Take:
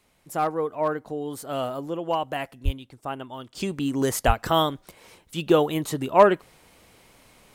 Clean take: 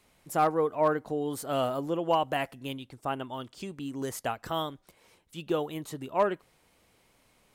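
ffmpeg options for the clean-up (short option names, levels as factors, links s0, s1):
-filter_complex "[0:a]asplit=3[s0][s1][s2];[s0]afade=t=out:st=2.64:d=0.02[s3];[s1]highpass=f=140:w=0.5412,highpass=f=140:w=1.3066,afade=t=in:st=2.64:d=0.02,afade=t=out:st=2.76:d=0.02[s4];[s2]afade=t=in:st=2.76:d=0.02[s5];[s3][s4][s5]amix=inputs=3:normalize=0,asplit=3[s6][s7][s8];[s6]afade=t=out:st=4.26:d=0.02[s9];[s7]highpass=f=140:w=0.5412,highpass=f=140:w=1.3066,afade=t=in:st=4.26:d=0.02,afade=t=out:st=4.38:d=0.02[s10];[s8]afade=t=in:st=4.38:d=0.02[s11];[s9][s10][s11]amix=inputs=3:normalize=0,asetnsamples=n=441:p=0,asendcmd='3.55 volume volume -10.5dB',volume=1"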